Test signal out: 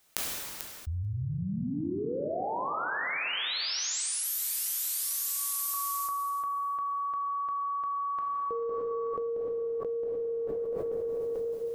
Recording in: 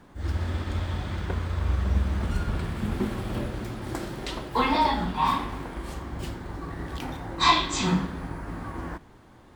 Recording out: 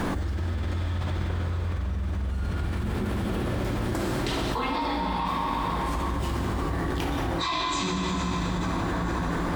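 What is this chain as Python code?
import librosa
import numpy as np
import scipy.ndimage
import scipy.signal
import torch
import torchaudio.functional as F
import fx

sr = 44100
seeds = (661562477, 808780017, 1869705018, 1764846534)

y = fx.echo_feedback(x, sr, ms=441, feedback_pct=38, wet_db=-15.0)
y = fx.rev_plate(y, sr, seeds[0], rt60_s=2.6, hf_ratio=0.85, predelay_ms=0, drr_db=-0.5)
y = fx.env_flatten(y, sr, amount_pct=100)
y = F.gain(torch.from_numpy(y), -13.5).numpy()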